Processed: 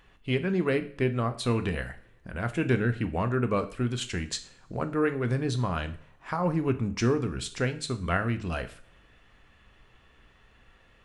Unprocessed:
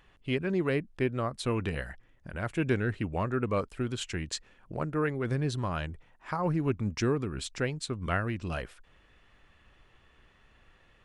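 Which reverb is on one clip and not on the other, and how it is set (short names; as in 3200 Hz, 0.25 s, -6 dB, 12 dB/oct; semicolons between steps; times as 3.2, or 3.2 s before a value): two-slope reverb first 0.44 s, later 2.2 s, from -26 dB, DRR 8 dB; gain +2 dB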